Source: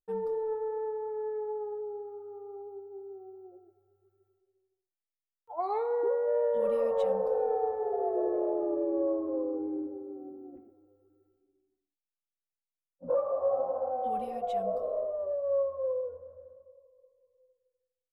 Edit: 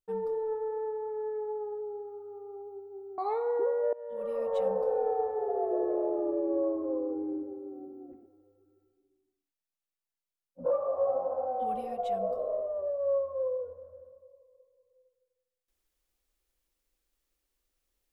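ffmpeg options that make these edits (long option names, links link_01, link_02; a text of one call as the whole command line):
ffmpeg -i in.wav -filter_complex "[0:a]asplit=3[link_01][link_02][link_03];[link_01]atrim=end=3.182[link_04];[link_02]atrim=start=5.618:end=6.37,asetpts=PTS-STARTPTS,afade=type=out:start_time=0.748:duration=0.004:curve=hsin:silence=0.0794328[link_05];[link_03]atrim=start=6.37,asetpts=PTS-STARTPTS,afade=type=in:duration=0.77:silence=0.0794328[link_06];[link_05][link_06]concat=n=2:v=0:a=1[link_07];[link_04][link_07]acrossfade=duration=0.004:curve1=hsin:curve2=hsin" out.wav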